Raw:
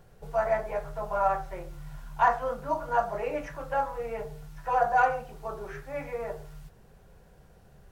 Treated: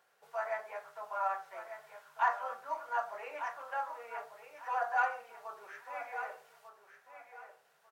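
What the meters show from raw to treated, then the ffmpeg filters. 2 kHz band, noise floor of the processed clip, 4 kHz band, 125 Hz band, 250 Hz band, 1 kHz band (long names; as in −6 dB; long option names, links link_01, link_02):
−4.0 dB, −70 dBFS, can't be measured, below −35 dB, below −25 dB, −7.5 dB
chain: -af "highpass=1200,highshelf=frequency=2100:gain=-8,aecho=1:1:1195|2390|3585:0.316|0.0759|0.0182"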